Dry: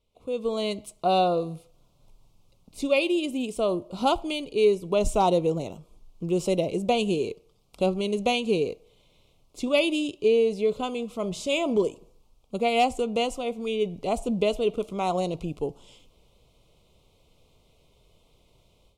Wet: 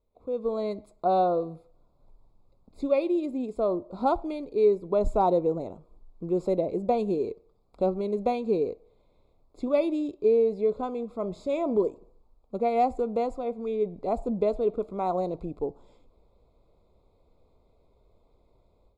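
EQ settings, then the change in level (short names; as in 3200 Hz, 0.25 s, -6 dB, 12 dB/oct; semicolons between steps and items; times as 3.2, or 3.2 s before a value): running mean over 15 samples; bell 140 Hz -7.5 dB 0.93 oct; 0.0 dB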